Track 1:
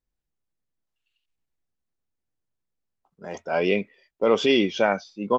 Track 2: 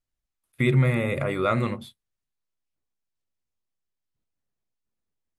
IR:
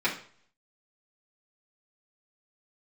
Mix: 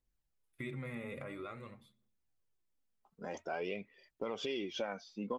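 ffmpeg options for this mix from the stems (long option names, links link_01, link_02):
-filter_complex "[0:a]acompressor=threshold=-24dB:ratio=2,volume=-3dB[link_01];[1:a]volume=-16dB,afade=type=out:start_time=1.21:duration=0.33:silence=0.421697,asplit=2[link_02][link_03];[link_03]volume=-19dB[link_04];[2:a]atrim=start_sample=2205[link_05];[link_04][link_05]afir=irnorm=-1:irlink=0[link_06];[link_01][link_02][link_06]amix=inputs=3:normalize=0,aphaser=in_gain=1:out_gain=1:delay=4.9:decay=0.4:speed=0.49:type=triangular,acompressor=threshold=-41dB:ratio=2.5"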